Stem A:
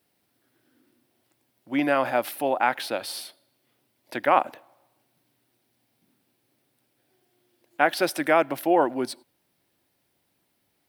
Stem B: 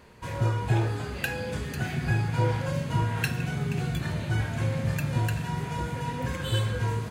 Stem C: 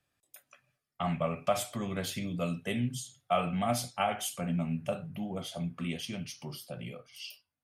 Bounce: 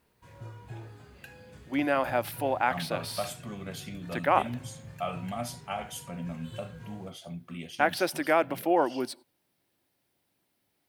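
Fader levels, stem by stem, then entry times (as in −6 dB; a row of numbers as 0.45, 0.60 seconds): −4.0, −18.5, −5.0 decibels; 0.00, 0.00, 1.70 seconds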